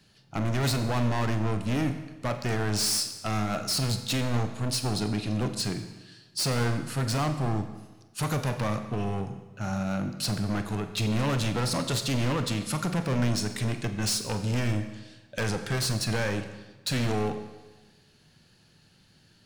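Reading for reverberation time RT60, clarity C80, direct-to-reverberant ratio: 1.2 s, 11.0 dB, 7.5 dB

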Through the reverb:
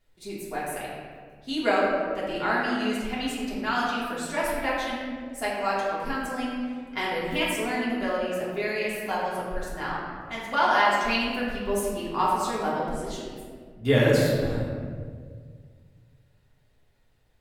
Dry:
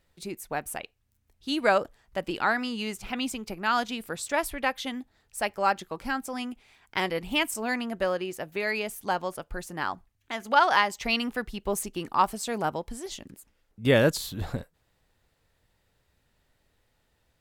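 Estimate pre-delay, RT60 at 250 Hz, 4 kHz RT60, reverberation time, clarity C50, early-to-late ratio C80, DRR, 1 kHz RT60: 3 ms, 2.3 s, 1.0 s, 1.9 s, -0.5 dB, 1.0 dB, -7.5 dB, 1.6 s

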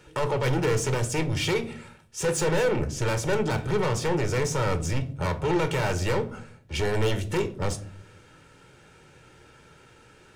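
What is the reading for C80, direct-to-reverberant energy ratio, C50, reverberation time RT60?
21.0 dB, 8.0 dB, 16.0 dB, 0.55 s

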